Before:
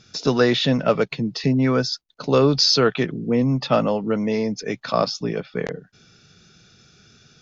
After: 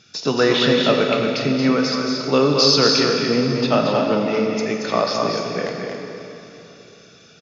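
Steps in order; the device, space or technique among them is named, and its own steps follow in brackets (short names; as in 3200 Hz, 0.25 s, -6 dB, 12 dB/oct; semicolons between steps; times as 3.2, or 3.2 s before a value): stadium PA (HPF 180 Hz 6 dB/oct; bell 2700 Hz +4 dB 0.6 oct; loudspeakers at several distances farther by 78 m -5 dB, 89 m -11 dB; reverb RT60 3.3 s, pre-delay 18 ms, DRR 2.5 dB)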